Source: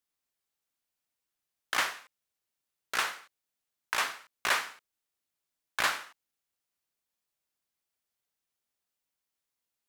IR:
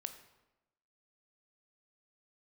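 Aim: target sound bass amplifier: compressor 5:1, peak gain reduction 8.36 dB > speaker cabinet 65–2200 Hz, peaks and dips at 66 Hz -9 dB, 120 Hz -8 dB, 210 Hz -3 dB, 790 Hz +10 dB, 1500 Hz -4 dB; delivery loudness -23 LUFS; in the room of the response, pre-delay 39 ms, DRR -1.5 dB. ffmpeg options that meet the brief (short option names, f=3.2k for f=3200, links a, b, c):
-filter_complex "[0:a]asplit=2[a][b];[1:a]atrim=start_sample=2205,adelay=39[c];[b][c]afir=irnorm=-1:irlink=0,volume=4dB[d];[a][d]amix=inputs=2:normalize=0,acompressor=threshold=-28dB:ratio=5,highpass=f=65:w=0.5412,highpass=f=65:w=1.3066,equalizer=f=66:t=q:w=4:g=-9,equalizer=f=120:t=q:w=4:g=-8,equalizer=f=210:t=q:w=4:g=-3,equalizer=f=790:t=q:w=4:g=10,equalizer=f=1.5k:t=q:w=4:g=-4,lowpass=f=2.2k:w=0.5412,lowpass=f=2.2k:w=1.3066,volume=13.5dB"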